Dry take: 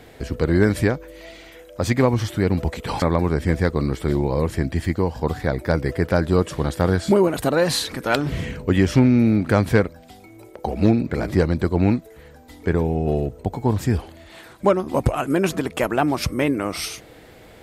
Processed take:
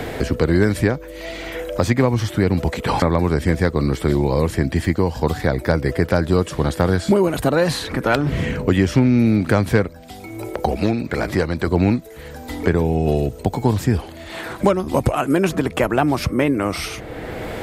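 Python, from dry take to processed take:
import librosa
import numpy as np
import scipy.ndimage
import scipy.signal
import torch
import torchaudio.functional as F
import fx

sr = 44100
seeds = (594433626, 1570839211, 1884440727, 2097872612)

y = fx.low_shelf(x, sr, hz=480.0, db=-9.5, at=(10.76, 11.67))
y = fx.band_squash(y, sr, depth_pct=70)
y = y * librosa.db_to_amplitude(2.0)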